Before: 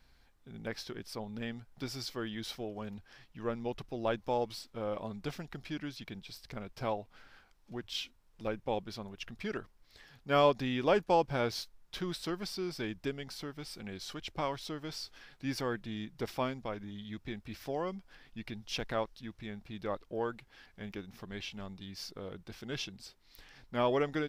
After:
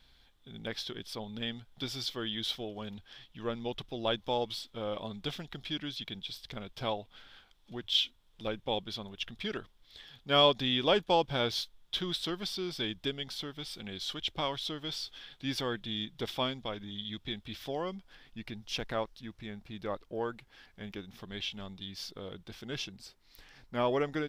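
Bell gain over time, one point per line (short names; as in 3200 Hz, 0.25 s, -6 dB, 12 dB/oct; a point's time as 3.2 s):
bell 3400 Hz 0.4 oct
17.51 s +15 dB
18.39 s +3 dB
20.67 s +3 dB
21.28 s +10 dB
22.36 s +10 dB
22.88 s +0.5 dB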